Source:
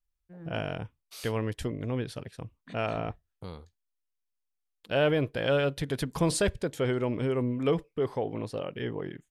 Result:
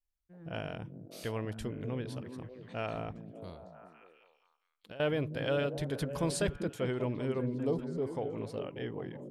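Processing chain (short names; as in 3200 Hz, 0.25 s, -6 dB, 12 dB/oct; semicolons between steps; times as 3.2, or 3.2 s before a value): 7.54–8.15 band shelf 2000 Hz -14 dB; delay with a stepping band-pass 0.196 s, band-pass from 170 Hz, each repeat 0.7 oct, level -3 dB; 3.53–5 compressor 10:1, threshold -40 dBFS, peak gain reduction 18.5 dB; gain -6 dB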